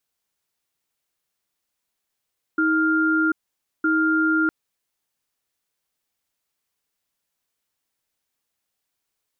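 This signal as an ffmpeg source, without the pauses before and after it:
-f lavfi -i "aevalsrc='0.106*(sin(2*PI*317*t)+sin(2*PI*1400*t))*clip(min(mod(t,1.26),0.74-mod(t,1.26))/0.005,0,1)':d=1.91:s=44100"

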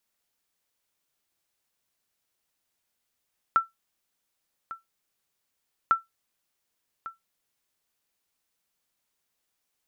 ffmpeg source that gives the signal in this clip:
-f lavfi -i "aevalsrc='0.251*(sin(2*PI*1340*mod(t,2.35))*exp(-6.91*mod(t,2.35)/0.16)+0.15*sin(2*PI*1340*max(mod(t,2.35)-1.15,0))*exp(-6.91*max(mod(t,2.35)-1.15,0)/0.16))':d=4.7:s=44100"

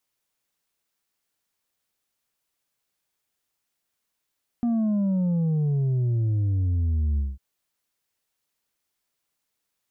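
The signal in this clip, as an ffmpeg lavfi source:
-f lavfi -i "aevalsrc='0.0891*clip((2.75-t)/0.2,0,1)*tanh(1.58*sin(2*PI*240*2.75/log(65/240)*(exp(log(65/240)*t/2.75)-1)))/tanh(1.58)':d=2.75:s=44100"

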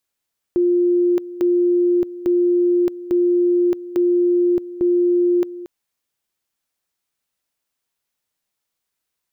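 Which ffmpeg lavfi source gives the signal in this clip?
-f lavfi -i "aevalsrc='pow(10,(-13-16*gte(mod(t,0.85),0.62))/20)*sin(2*PI*352*t)':d=5.1:s=44100"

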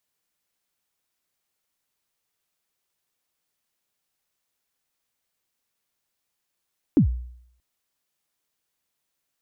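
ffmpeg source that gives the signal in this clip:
-f lavfi -i "aevalsrc='0.299*pow(10,-3*t/0.68)*sin(2*PI*(340*0.103/log(61/340)*(exp(log(61/340)*min(t,0.103)/0.103)-1)+61*max(t-0.103,0)))':d=0.63:s=44100"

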